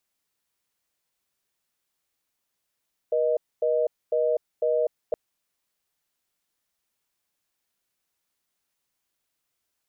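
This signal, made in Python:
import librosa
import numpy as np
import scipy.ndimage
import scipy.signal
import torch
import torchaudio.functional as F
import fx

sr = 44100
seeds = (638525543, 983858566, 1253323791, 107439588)

y = fx.call_progress(sr, length_s=2.02, kind='reorder tone', level_db=-23.0)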